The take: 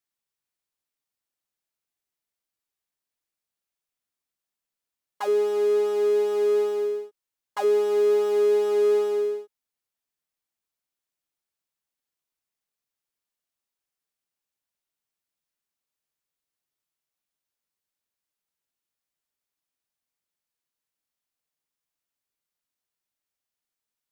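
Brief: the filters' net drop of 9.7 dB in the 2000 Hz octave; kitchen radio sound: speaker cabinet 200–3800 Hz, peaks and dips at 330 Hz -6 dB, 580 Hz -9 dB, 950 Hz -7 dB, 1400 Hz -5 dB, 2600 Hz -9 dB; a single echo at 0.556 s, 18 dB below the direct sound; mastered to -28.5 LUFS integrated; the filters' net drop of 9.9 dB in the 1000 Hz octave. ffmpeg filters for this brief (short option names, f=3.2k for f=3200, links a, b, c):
-af "highpass=200,equalizer=f=330:t=q:w=4:g=-6,equalizer=f=580:t=q:w=4:g=-9,equalizer=f=950:t=q:w=4:g=-7,equalizer=f=1.4k:t=q:w=4:g=-5,equalizer=f=2.6k:t=q:w=4:g=-9,lowpass=f=3.8k:w=0.5412,lowpass=f=3.8k:w=1.3066,equalizer=f=1k:t=o:g=-6,equalizer=f=2k:t=o:g=-5.5,aecho=1:1:556:0.126,volume=-2dB"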